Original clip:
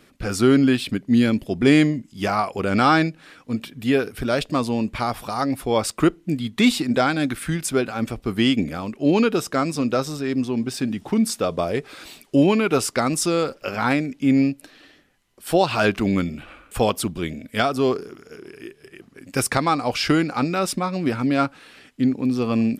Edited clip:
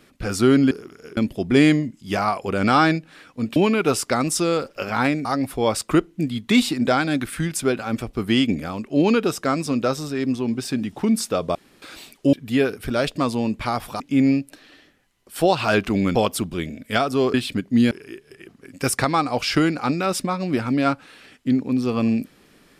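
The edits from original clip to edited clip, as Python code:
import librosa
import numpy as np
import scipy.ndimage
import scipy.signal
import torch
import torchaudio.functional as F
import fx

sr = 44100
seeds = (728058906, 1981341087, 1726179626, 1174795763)

y = fx.edit(x, sr, fx.swap(start_s=0.71, length_s=0.57, other_s=17.98, other_length_s=0.46),
    fx.swap(start_s=3.67, length_s=1.67, other_s=12.42, other_length_s=1.69),
    fx.room_tone_fill(start_s=11.64, length_s=0.27),
    fx.cut(start_s=16.26, length_s=0.53), tone=tone)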